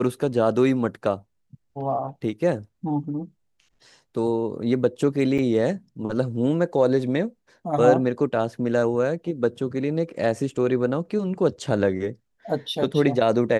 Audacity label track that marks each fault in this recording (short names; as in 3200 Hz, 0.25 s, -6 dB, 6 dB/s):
5.380000	5.390000	gap 6.2 ms